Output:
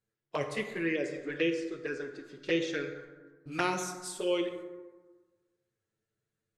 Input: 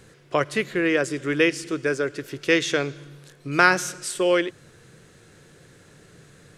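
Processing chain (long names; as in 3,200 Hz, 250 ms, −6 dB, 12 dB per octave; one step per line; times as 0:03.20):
noise gate −42 dBFS, range −19 dB
noise reduction from a noise print of the clip's start 8 dB
flanger swept by the level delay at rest 9 ms, full sweep at −16.5 dBFS
0:00.85–0:03.47: high-frequency loss of the air 100 metres
dense smooth reverb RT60 1.4 s, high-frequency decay 0.4×, DRR 4.5 dB
level −7.5 dB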